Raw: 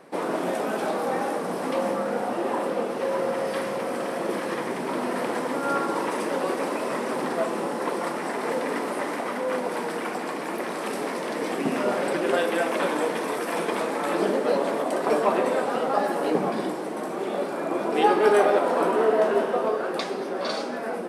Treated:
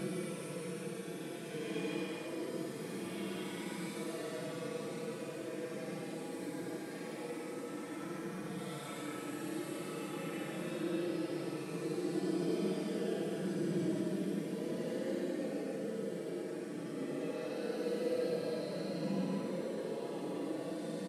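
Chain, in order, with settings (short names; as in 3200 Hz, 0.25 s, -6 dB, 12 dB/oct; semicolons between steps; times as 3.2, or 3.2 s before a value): passive tone stack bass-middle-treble 10-0-1; Paulstretch 20×, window 0.05 s, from 13.6; comb 6.1 ms, depth 53%; echo 1.11 s -13.5 dB; gain +8 dB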